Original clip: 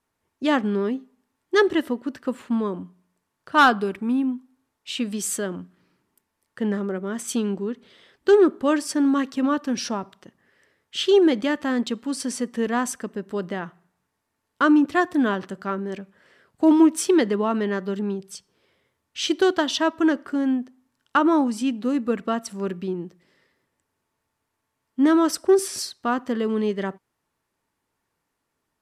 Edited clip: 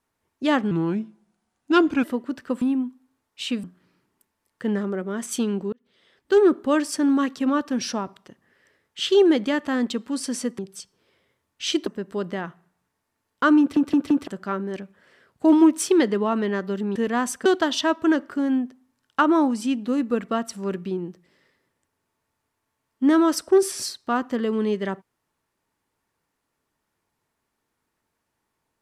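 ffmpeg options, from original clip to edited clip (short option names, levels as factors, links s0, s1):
-filter_complex "[0:a]asplit=14[s0][s1][s2][s3][s4][s5][s6][s7][s8][s9][s10][s11][s12][s13];[s0]atrim=end=0.714[s14];[s1]atrim=start=0.71:end=1.81,asetpts=PTS-STARTPTS,asetrate=36603,aresample=44100[s15];[s2]atrim=start=1.806:end=2.392[s16];[s3]atrim=start=4.098:end=5.122[s17];[s4]atrim=start=5.598:end=7.69,asetpts=PTS-STARTPTS,afade=t=out:st=2.088:d=0.004:c=hsin[s18];[s5]atrim=start=7.69:end=12.552,asetpts=PTS-STARTPTS,afade=t=in:d=0.77[s19];[s6]atrim=start=18.138:end=19.422[s20];[s7]atrim=start=13.048:end=14.952[s21];[s8]atrim=start=14.778:end=14.952[s22];[s9]atrim=start=14.778:end=14.952[s23];[s10]atrim=start=14.778:end=14.952[s24];[s11]atrim=start=15.458:end=18.142[s25];[s12]atrim=start=12.548:end=13.052[s26];[s13]atrim=start=19.418[s27];[s14][s15]acrossfade=d=0.004:c1=hsin:c2=hsin[s28];[s28][s16]acrossfade=d=0.004:c1=hsin:c2=hsin[s29];[s29][s17]acrossfade=d=0.004:c1=hsin:c2=hsin[s30];[s18][s19]concat=n=2:v=0:a=1[s31];[s30][s31]acrossfade=d=0.004:c1=hsin:c2=hsin[s32];[s32][s20]acrossfade=d=0.004:c1=hsin:c2=hsin[s33];[s33][s21]acrossfade=d=0.004:c1=hsin:c2=hsin[s34];[s34][s22]acrossfade=d=0.004:c1=hsin:c2=hsin[s35];[s35][s23]acrossfade=d=0.004:c1=hsin:c2=hsin[s36];[s36][s24]acrossfade=d=0.004:c1=hsin:c2=hsin[s37];[s37][s25]acrossfade=d=0.004:c1=hsin:c2=hsin[s38];[s38][s26]acrossfade=d=0.004:c1=hsin:c2=hsin[s39];[s39][s27]acrossfade=d=0.004:c1=hsin:c2=hsin"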